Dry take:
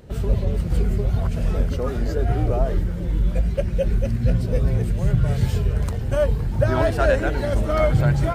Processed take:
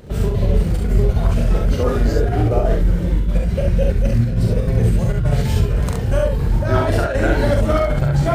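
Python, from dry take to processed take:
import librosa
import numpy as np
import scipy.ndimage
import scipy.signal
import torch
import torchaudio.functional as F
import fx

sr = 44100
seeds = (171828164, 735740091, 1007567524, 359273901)

y = fx.over_compress(x, sr, threshold_db=-20.0, ratio=-0.5)
y = fx.room_early_taps(y, sr, ms=(42, 69), db=(-4.0, -3.5))
y = y * librosa.db_to_amplitude(3.0)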